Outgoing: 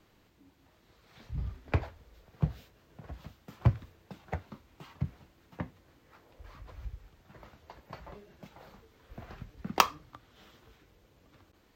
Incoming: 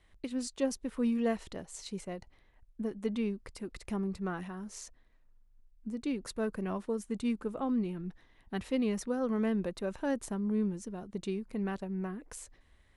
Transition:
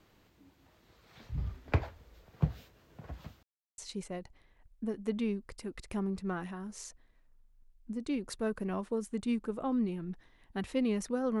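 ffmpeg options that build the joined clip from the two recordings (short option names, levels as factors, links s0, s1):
-filter_complex "[0:a]apad=whole_dur=11.4,atrim=end=11.4,asplit=2[s0][s1];[s0]atrim=end=3.43,asetpts=PTS-STARTPTS,afade=t=out:st=3.426:d=0.004:c=hsin[s2];[s1]atrim=start=3.43:end=3.78,asetpts=PTS-STARTPTS,volume=0[s3];[1:a]atrim=start=1.75:end=9.37,asetpts=PTS-STARTPTS,afade=t=in:d=0.004:c=hsin[s4];[s2][s3][s4]concat=n=3:v=0:a=1"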